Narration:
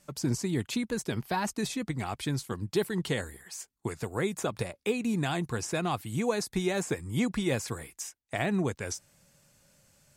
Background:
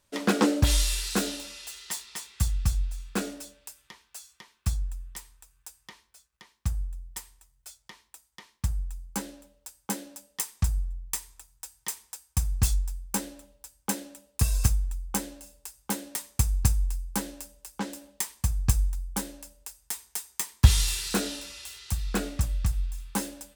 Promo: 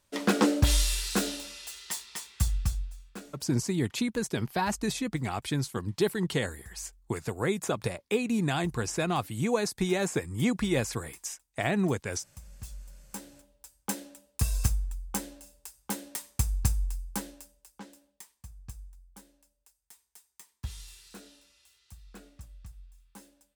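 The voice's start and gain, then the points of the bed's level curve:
3.25 s, +1.5 dB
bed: 2.55 s -1 dB
3.55 s -21.5 dB
12.49 s -21.5 dB
13.70 s -3.5 dB
17.10 s -3.5 dB
18.39 s -21 dB

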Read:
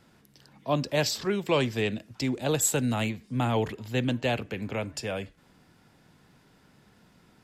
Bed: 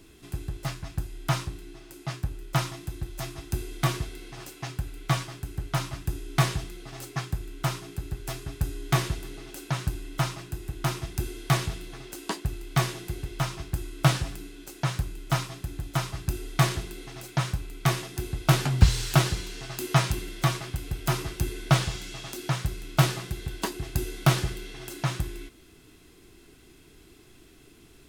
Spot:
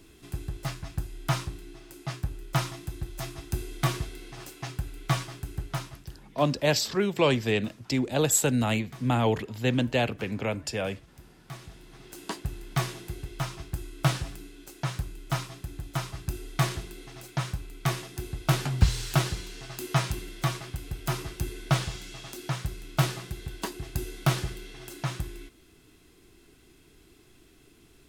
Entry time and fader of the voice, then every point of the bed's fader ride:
5.70 s, +2.0 dB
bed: 5.60 s -1 dB
6.46 s -22 dB
11.38 s -22 dB
12.20 s -3.5 dB

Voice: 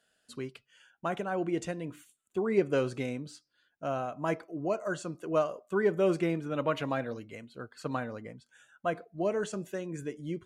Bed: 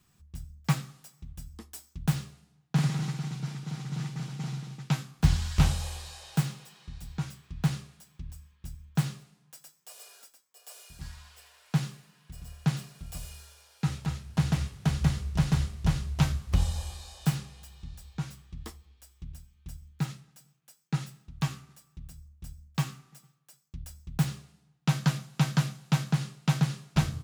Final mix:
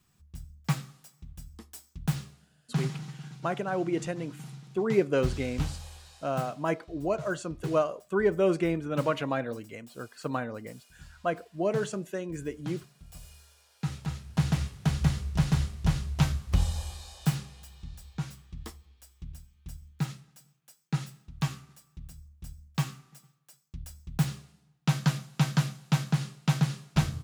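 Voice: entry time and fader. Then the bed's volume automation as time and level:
2.40 s, +2.0 dB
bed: 2.72 s -2 dB
3.04 s -9 dB
12.98 s -9 dB
14.42 s 0 dB

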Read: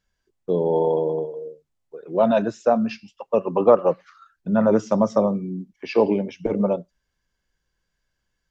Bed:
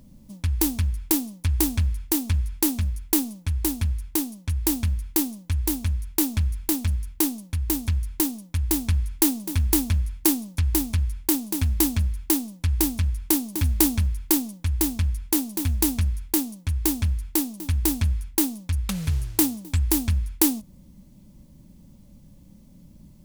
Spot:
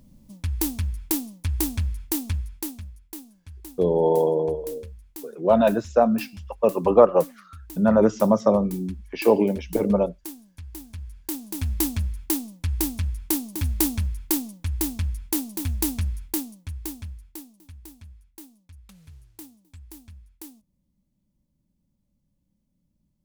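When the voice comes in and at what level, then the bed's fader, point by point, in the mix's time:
3.30 s, +0.5 dB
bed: 2.29 s -3 dB
3.05 s -17.5 dB
10.73 s -17.5 dB
11.71 s -3 dB
16.23 s -3 dB
17.90 s -23 dB

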